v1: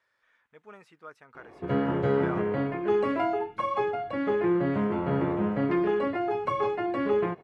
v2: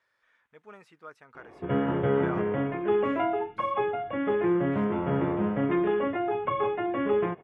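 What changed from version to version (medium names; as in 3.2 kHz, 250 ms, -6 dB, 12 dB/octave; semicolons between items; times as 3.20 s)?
background: add brick-wall FIR low-pass 3.7 kHz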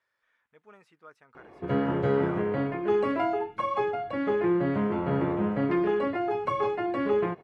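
speech -5.0 dB; background: remove brick-wall FIR low-pass 3.7 kHz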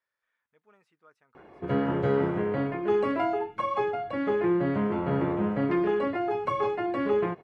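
speech -8.0 dB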